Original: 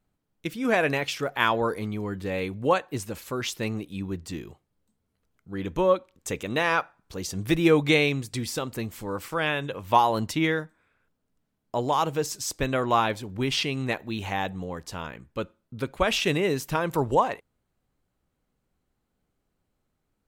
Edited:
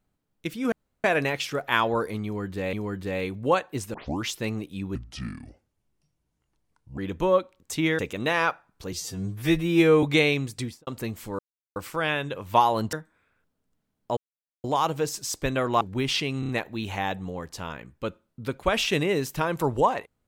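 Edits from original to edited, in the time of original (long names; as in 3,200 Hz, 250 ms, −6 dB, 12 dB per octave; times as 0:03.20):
0:00.72: splice in room tone 0.32 s
0:01.92–0:02.41: repeat, 2 plays
0:03.13: tape start 0.30 s
0:04.14–0:05.54: play speed 69%
0:07.23–0:07.78: time-stretch 2×
0:08.33–0:08.62: fade out and dull
0:09.14: splice in silence 0.37 s
0:10.31–0:10.57: move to 0:06.29
0:11.81: splice in silence 0.47 s
0:12.98–0:13.24: remove
0:13.83: stutter 0.03 s, 4 plays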